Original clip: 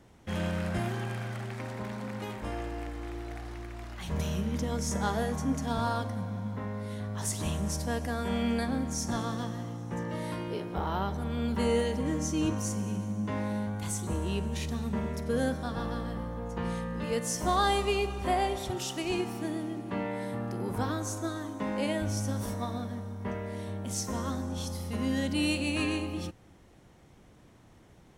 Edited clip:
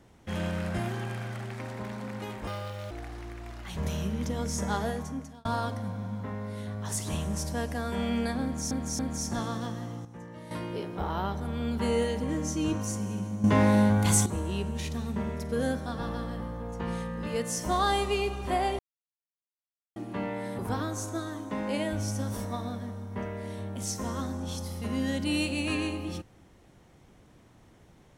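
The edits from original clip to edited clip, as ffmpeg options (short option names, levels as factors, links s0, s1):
-filter_complex "[0:a]asplit=13[s0][s1][s2][s3][s4][s5][s6][s7][s8][s9][s10][s11][s12];[s0]atrim=end=2.474[s13];[s1]atrim=start=2.47:end=3.24,asetpts=PTS-STARTPTS,asetrate=77175,aresample=44100[s14];[s2]atrim=start=3.236:end=5.78,asetpts=PTS-STARTPTS,afade=t=out:st=1.914:d=0.63[s15];[s3]atrim=start=5.78:end=9.042,asetpts=PTS-STARTPTS,afade=t=in:d=0.004:c=hsin[s16];[s4]atrim=start=8.758:end=9.042[s17];[s5]atrim=start=8.758:end=9.822[s18];[s6]atrim=start=9.818:end=10.282,asetpts=PTS-STARTPTS,volume=0.335[s19];[s7]atrim=start=10.278:end=13.212[s20];[s8]atrim=start=13.208:end=14.032,asetpts=PTS-STARTPTS,volume=3.55[s21];[s9]atrim=start=14.028:end=18.56,asetpts=PTS-STARTPTS,afade=t=out:st=4.528:d=0.004:c=hsin[s22];[s10]atrim=start=18.56:end=19.73,asetpts=PTS-STARTPTS,volume=0[s23];[s11]atrim=start=19.73:end=20.362,asetpts=PTS-STARTPTS,afade=t=in:d=0.004:c=hsin[s24];[s12]atrim=start=20.678[s25];[s13][s14]acrossfade=d=0.004:c1=hsin:c2=hsin[s26];[s15][s16]concat=n=2:v=0:a=1[s27];[s26][s27]acrossfade=d=0.004:c1=hsin:c2=hsin[s28];[s28][s17]acrossfade=d=0.004:c1=hsin:c2=hsin[s29];[s29][s18]acrossfade=d=0.004:c1=hsin:c2=hsin[s30];[s30][s19]acrossfade=d=0.004:c1=hsin:c2=hsin[s31];[s31][s20]acrossfade=d=0.004:c1=hsin:c2=hsin[s32];[s32][s21]acrossfade=d=0.004:c1=hsin:c2=hsin[s33];[s22][s23][s24]concat=n=3:v=0:a=1[s34];[s33][s34]acrossfade=d=0.004:c1=hsin:c2=hsin[s35];[s35][s25]acrossfade=d=0.004:c1=hsin:c2=hsin"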